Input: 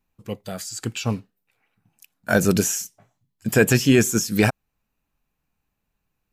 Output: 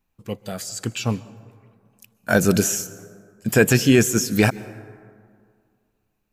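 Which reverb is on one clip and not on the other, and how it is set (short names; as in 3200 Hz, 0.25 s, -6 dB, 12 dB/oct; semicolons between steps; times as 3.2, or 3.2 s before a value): plate-style reverb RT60 2.1 s, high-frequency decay 0.4×, pre-delay 0.115 s, DRR 18 dB; gain +1 dB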